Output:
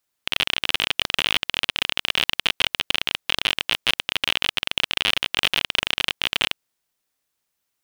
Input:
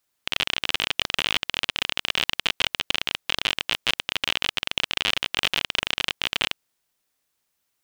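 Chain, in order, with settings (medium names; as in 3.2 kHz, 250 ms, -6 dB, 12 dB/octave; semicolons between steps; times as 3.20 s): waveshaping leveller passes 1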